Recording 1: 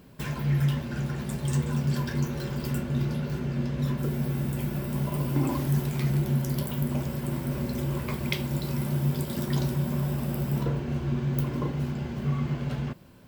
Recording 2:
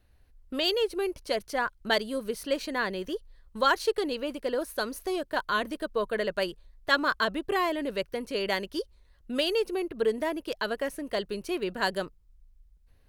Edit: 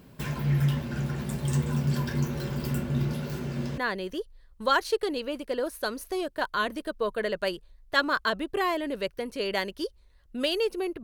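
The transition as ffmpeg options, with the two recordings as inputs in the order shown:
-filter_complex "[0:a]asettb=1/sr,asplit=3[a][b][c];[a]atrim=end=3.134[d];[b]atrim=start=3.13:end=3.78,asetpts=PTS-STARTPTS,afade=t=in:d=0.004:c=qsin,afade=t=out:st=0.646:d=0.004:c=qsin,bass=f=250:g=-4,treble=f=4k:g=5[e];[c]atrim=start=3.776[f];[d][e]acrossfade=d=0.004:c1=hsin:c2=qsin[g];[g][f]acrossfade=d=0.004:c1=qsin:c2=hsin,apad=whole_dur=11.03,atrim=end=11.03,atrim=end=3.782[h];[1:a]atrim=start=2.728:end=9.98[i];[h][i]acrossfade=d=0.004:c1=hsin:c2=hsin"

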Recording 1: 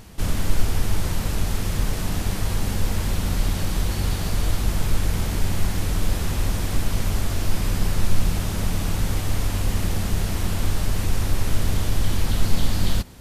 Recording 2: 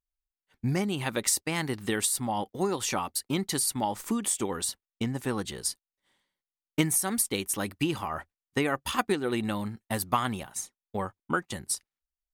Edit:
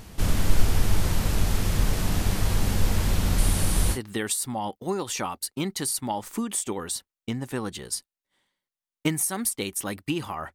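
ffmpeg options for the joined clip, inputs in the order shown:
-filter_complex "[0:a]asettb=1/sr,asplit=3[a][b][c];[a]atrim=end=3.384[d];[b]atrim=start=3.38:end=3.99,asetpts=PTS-STARTPTS,afade=t=in:d=0.004:c=qsin,afade=t=out:st=0.606:d=0.004:c=qsin,equalizer=f=9.6k:t=o:w=0.51:g=12[e];[c]atrim=start=3.986[f];[d][e]acrossfade=d=0.004:c1=hsin:c2=qsin[g];[g][f]acrossfade=d=0.004:c1=qsin:c2=hsin,apad=whole_dur=10.54,atrim=end=10.54,atrim=end=3.99,asetpts=PTS-STARTPTS[h];[1:a]atrim=start=1.64:end=8.27,asetpts=PTS-STARTPTS[i];[h][i]acrossfade=d=0.08:c1=tri:c2=tri"

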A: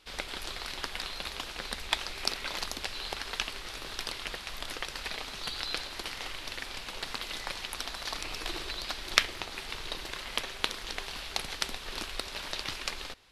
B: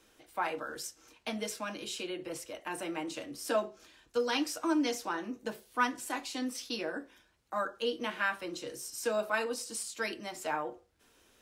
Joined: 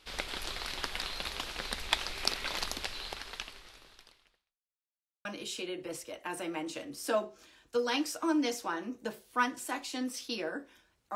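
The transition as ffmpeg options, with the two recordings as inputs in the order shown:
-filter_complex "[0:a]apad=whole_dur=11.15,atrim=end=11.15,asplit=2[a][b];[a]atrim=end=4.58,asetpts=PTS-STARTPTS,afade=t=out:st=2.7:d=1.88:c=qua[c];[b]atrim=start=4.58:end=5.25,asetpts=PTS-STARTPTS,volume=0[d];[1:a]atrim=start=1.66:end=7.56,asetpts=PTS-STARTPTS,afade=t=in:d=0.004:c=hsin[e];[c][d][e]concat=n=3:v=0:a=1"

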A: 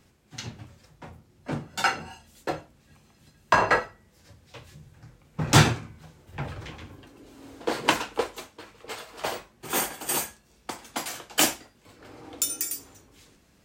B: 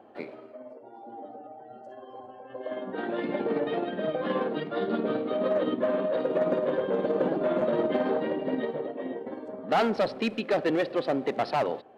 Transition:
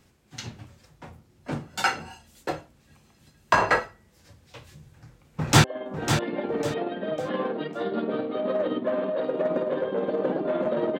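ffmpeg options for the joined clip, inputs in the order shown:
-filter_complex "[0:a]apad=whole_dur=10.99,atrim=end=10.99,atrim=end=5.642[a];[1:a]atrim=start=2.598:end=7.95[b];[a][b]acrossfade=d=0.004:c1=hsin:c2=hsin,asplit=2[c][d];[d]afade=t=in:st=5.3:d=0.01,afade=t=out:st=5.64:d=0.01,aecho=0:1:550|1100|1650|2200:0.421697|0.126509|0.0379527|0.0113858[e];[c][e]amix=inputs=2:normalize=0"

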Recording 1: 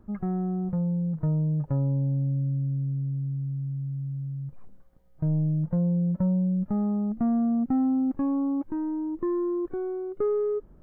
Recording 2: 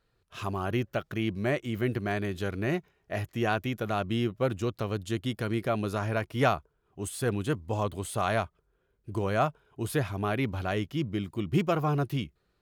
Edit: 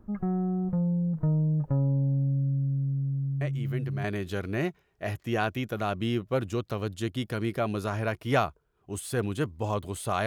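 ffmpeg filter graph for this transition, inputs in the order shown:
-filter_complex "[1:a]asplit=2[a][b];[0:a]apad=whole_dur=10.26,atrim=end=10.26,atrim=end=4.042[c];[b]atrim=start=2.128:end=8.35[d];[a]atrim=start=1.5:end=2.13,asetpts=PTS-STARTPTS,volume=-7dB,afade=t=in:d=0.004:c=hsin,afade=t=out:st=0.626:d=0.004:c=hsin,adelay=150381S[e];[c][d]acrossfade=d=0.004:c1=hsin:c2=hsin[f];[f][e]amix=inputs=2:normalize=0"

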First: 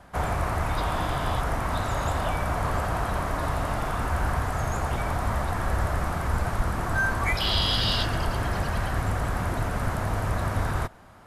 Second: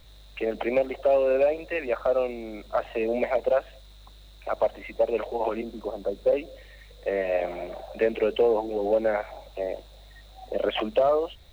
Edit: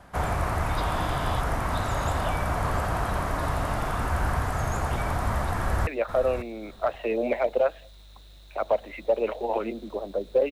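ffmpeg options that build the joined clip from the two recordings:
-filter_complex "[0:a]apad=whole_dur=10.51,atrim=end=10.51,atrim=end=5.872[a];[1:a]atrim=start=1.778:end=6.42[b];[a][b]acrossfade=d=0.004:c1=hsin:c2=hsin,asplit=2[c][d];[d]afade=t=in:st=5.53:d=0.01,afade=t=out:st=5.87:d=0.01,aecho=0:1:550|1100:0.281838|0.0422757[e];[c][e]amix=inputs=2:normalize=0"

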